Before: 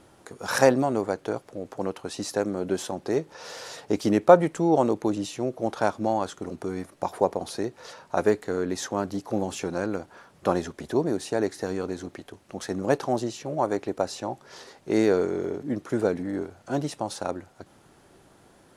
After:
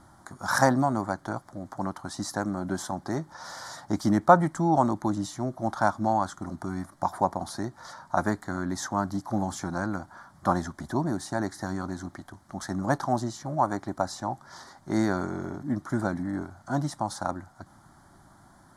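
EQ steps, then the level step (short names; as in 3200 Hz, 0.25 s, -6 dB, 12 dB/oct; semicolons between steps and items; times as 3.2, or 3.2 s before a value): high shelf 5500 Hz -6 dB; fixed phaser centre 1100 Hz, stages 4; +4.5 dB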